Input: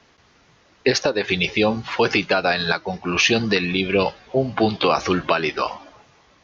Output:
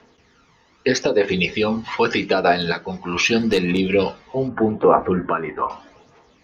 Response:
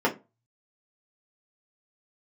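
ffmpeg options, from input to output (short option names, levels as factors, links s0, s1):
-filter_complex "[0:a]asplit=3[s0][s1][s2];[s0]afade=t=out:st=3.38:d=0.02[s3];[s1]aeval=exprs='clip(val(0),-1,0.141)':c=same,afade=t=in:st=3.38:d=0.02,afade=t=out:st=3.78:d=0.02[s4];[s2]afade=t=in:st=3.78:d=0.02[s5];[s3][s4][s5]amix=inputs=3:normalize=0,aphaser=in_gain=1:out_gain=1:delay=1.1:decay=0.5:speed=0.81:type=triangular,asettb=1/sr,asplit=3[s6][s7][s8];[s6]atrim=end=4.484[s9];[s7]atrim=start=4.48:end=5.7,asetpts=PTS-STARTPTS,afade=t=in:d=0.004:c=qsin,afade=t=out:st=1.216:d=0.004:c=qsin,lowpass=f=1700:w=0.5412,lowpass=f=1700:w=1.3066[s10];[s8]atrim=start=5.696[s11];[s9][s10]acrossfade=d=0.004:c1=hsin:c2=qsin[s12];[s12][s11]acrossfade=d=0.004:c1=qsin:c2=hsin,asplit=2[s13][s14];[1:a]atrim=start_sample=2205[s15];[s14][s15]afir=irnorm=-1:irlink=0,volume=0.119[s16];[s13][s16]amix=inputs=2:normalize=0,volume=0.631"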